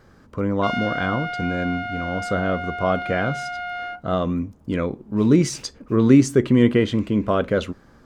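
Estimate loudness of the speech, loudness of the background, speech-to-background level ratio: -21.5 LUFS, -29.0 LUFS, 7.5 dB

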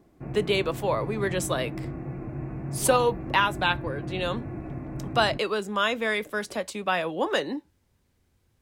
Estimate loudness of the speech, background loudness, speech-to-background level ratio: -27.0 LUFS, -35.5 LUFS, 8.5 dB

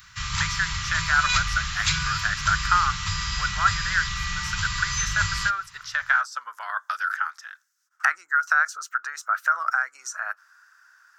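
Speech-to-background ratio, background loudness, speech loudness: 1.5 dB, -27.0 LUFS, -25.5 LUFS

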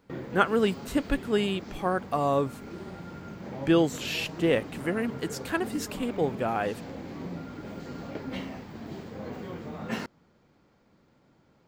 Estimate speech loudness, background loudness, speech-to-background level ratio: -28.5 LUFS, -39.5 LUFS, 11.0 dB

